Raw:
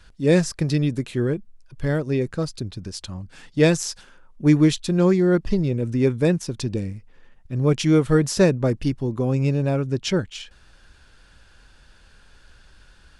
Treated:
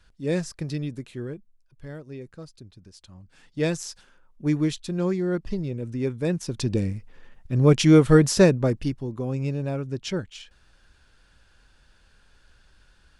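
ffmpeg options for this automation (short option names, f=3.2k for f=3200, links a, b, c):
-af "volume=10dB,afade=t=out:st=0.72:d=1.13:silence=0.421697,afade=t=in:st=3.02:d=0.7:silence=0.375837,afade=t=in:st=6.23:d=0.61:silence=0.316228,afade=t=out:st=8.16:d=0.89:silence=0.354813"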